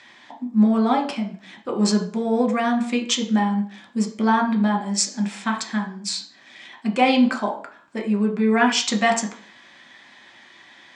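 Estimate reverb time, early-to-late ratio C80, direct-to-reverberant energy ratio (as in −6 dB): 0.50 s, 15.5 dB, 3.0 dB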